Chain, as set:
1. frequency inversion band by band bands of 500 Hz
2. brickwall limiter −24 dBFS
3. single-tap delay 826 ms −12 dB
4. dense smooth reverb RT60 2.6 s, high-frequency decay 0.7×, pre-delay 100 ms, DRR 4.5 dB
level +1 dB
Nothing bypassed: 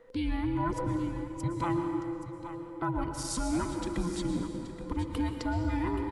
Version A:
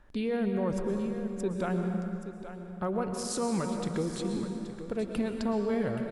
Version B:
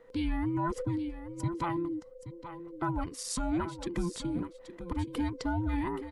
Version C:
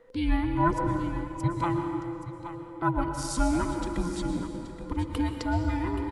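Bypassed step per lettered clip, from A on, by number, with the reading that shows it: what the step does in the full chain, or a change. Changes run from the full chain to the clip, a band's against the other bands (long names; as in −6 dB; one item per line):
1, 500 Hz band +6.5 dB
4, echo-to-direct ratio −3.5 dB to −12.0 dB
2, change in crest factor +5.0 dB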